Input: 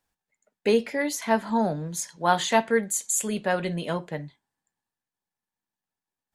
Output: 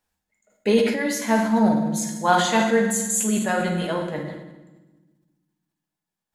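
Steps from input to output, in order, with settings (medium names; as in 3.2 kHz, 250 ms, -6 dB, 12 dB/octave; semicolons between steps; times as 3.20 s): on a send at -1.5 dB: reverberation RT60 1.3 s, pre-delay 5 ms; on the sum: decay stretcher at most 55 dB/s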